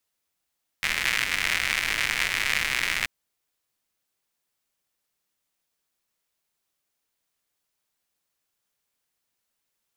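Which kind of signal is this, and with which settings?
rain-like ticks over hiss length 2.23 s, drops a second 160, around 2,100 Hz, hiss −14 dB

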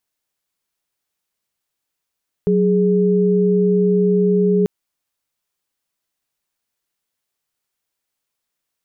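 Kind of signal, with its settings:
held notes F#3/G#4 sine, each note −15 dBFS 2.19 s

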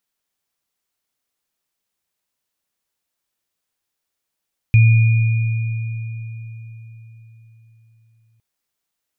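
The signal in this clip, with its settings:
inharmonic partials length 3.66 s, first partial 113 Hz, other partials 2,440 Hz, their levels −14 dB, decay 4.39 s, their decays 3.59 s, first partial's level −6.5 dB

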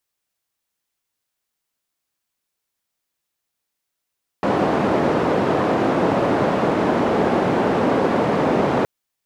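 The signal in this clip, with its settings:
band-limited noise 170–600 Hz, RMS −18.5 dBFS 4.42 s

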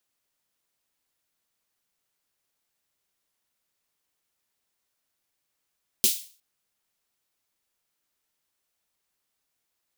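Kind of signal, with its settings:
synth snare length 0.36 s, tones 230 Hz, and 380 Hz, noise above 3,000 Hz, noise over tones 11 dB, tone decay 0.10 s, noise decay 0.40 s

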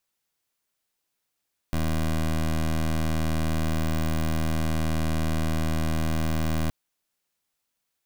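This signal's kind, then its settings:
pulse wave 79.4 Hz, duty 18% −24.5 dBFS 4.97 s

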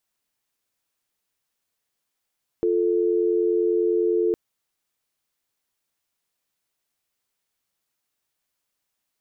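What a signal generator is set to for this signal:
call progress tone dial tone, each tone −21 dBFS 1.71 s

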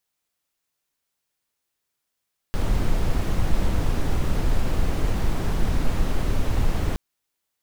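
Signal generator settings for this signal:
noise brown, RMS −19.5 dBFS 4.42 s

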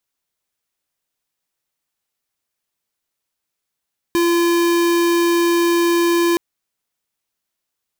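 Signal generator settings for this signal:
tone square 342 Hz −15.5 dBFS 2.22 s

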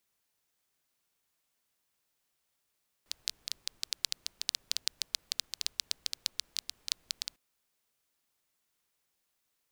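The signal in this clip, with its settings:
rain-like ticks over hiss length 4.30 s, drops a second 8.8, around 4,400 Hz, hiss −29 dB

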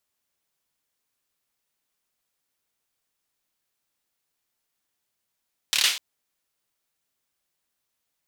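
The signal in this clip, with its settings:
synth clap length 0.25 s, bursts 5, apart 27 ms, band 3,300 Hz, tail 0.43 s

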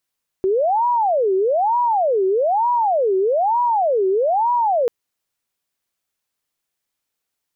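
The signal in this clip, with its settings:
siren wail 376–972 Hz 1.1 per second sine −14.5 dBFS 4.44 s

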